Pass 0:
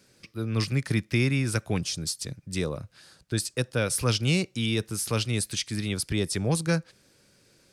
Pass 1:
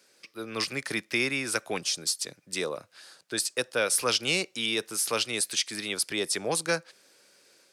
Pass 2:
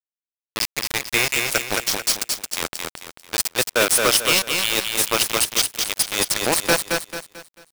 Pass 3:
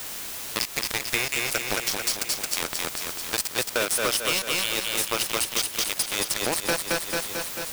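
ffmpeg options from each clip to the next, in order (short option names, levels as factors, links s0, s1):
-af "highpass=450,dynaudnorm=f=230:g=3:m=1.41"
-filter_complex "[0:a]acrusher=bits=3:mix=0:aa=0.000001,asplit=2[s0][s1];[s1]aecho=0:1:221|442|663|884|1105:0.631|0.233|0.0864|0.032|0.0118[s2];[s0][s2]amix=inputs=2:normalize=0,volume=2.11"
-af "aeval=exprs='val(0)+0.5*0.0708*sgn(val(0))':c=same,acompressor=threshold=0.0891:ratio=6"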